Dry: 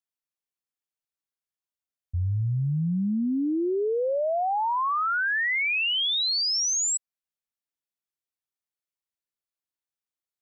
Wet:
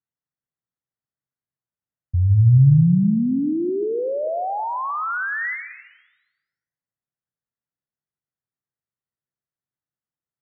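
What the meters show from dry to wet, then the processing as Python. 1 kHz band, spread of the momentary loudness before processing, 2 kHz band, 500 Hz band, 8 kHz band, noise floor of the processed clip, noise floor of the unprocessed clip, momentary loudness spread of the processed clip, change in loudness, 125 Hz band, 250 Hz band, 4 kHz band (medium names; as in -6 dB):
0.0 dB, 5 LU, -2.0 dB, +2.0 dB, no reading, under -85 dBFS, under -85 dBFS, 12 LU, +5.0 dB, +12.5 dB, +7.0 dB, under -40 dB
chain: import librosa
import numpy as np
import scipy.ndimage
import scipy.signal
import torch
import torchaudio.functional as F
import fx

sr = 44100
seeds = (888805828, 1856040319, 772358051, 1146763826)

y = scipy.signal.sosfilt(scipy.signal.cheby1(6, 1.0, 2000.0, 'lowpass', fs=sr, output='sos'), x)
y = fx.peak_eq(y, sr, hz=130.0, db=15.0, octaves=1.4)
y = fx.rev_plate(y, sr, seeds[0], rt60_s=1.2, hf_ratio=0.6, predelay_ms=110, drr_db=11.0)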